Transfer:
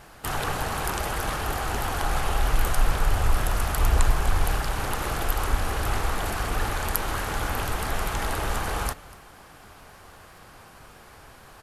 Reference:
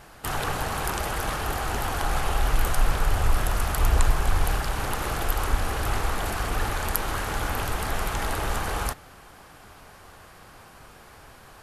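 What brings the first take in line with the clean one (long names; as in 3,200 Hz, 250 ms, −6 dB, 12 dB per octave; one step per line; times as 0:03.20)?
click removal
echo removal 241 ms −21 dB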